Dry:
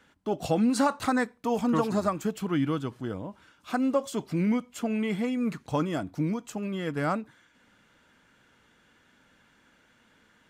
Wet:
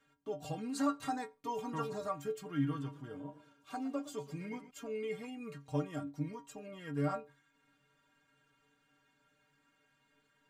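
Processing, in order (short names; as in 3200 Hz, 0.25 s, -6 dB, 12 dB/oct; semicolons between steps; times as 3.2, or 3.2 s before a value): metallic resonator 140 Hz, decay 0.26 s, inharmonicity 0.008; 2.45–4.71 warbling echo 0.114 s, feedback 44%, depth 87 cents, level -15.5 dB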